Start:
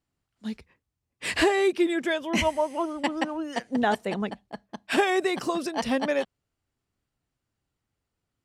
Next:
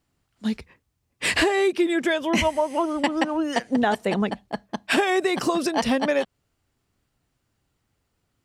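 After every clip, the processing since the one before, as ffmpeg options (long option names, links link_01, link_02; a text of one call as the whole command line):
ffmpeg -i in.wav -af "acompressor=threshold=-29dB:ratio=3,volume=9dB" out.wav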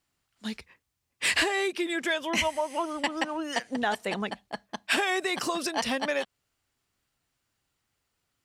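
ffmpeg -i in.wav -filter_complex "[0:a]tiltshelf=frequency=730:gain=-5.5,asplit=2[link_01][link_02];[link_02]asoftclip=type=tanh:threshold=-15dB,volume=-6.5dB[link_03];[link_01][link_03]amix=inputs=2:normalize=0,volume=-9dB" out.wav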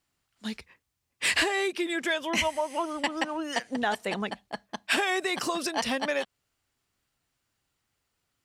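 ffmpeg -i in.wav -af anull out.wav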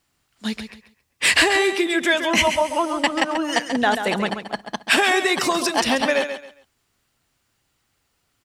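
ffmpeg -i in.wav -af "aecho=1:1:136|272|408:0.355|0.0887|0.0222,volume=8.5dB" out.wav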